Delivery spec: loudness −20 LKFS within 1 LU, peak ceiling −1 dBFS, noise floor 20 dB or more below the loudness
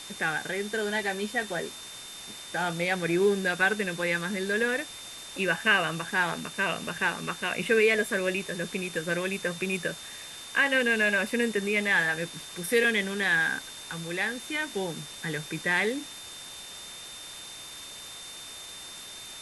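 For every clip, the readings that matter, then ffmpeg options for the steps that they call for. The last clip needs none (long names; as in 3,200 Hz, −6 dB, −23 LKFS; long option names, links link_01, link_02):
interfering tone 3,600 Hz; level of the tone −44 dBFS; background noise floor −43 dBFS; target noise floor −48 dBFS; integrated loudness −27.5 LKFS; sample peak −11.0 dBFS; target loudness −20.0 LKFS
→ -af "bandreject=frequency=3600:width=30"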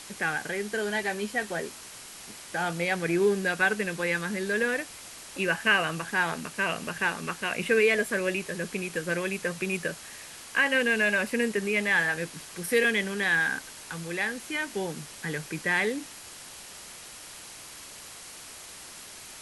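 interfering tone none found; background noise floor −45 dBFS; target noise floor −48 dBFS
→ -af "afftdn=noise_reduction=6:noise_floor=-45"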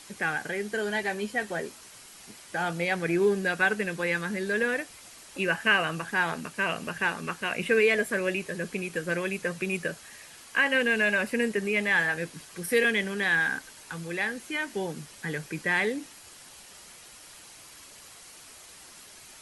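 background noise floor −50 dBFS; integrated loudness −27.5 LKFS; sample peak −10.5 dBFS; target loudness −20.0 LKFS
→ -af "volume=7.5dB"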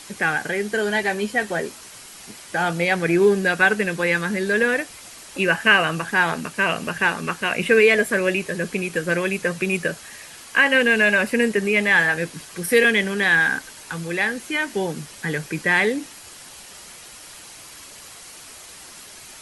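integrated loudness −20.0 LKFS; sample peak −3.0 dBFS; background noise floor −42 dBFS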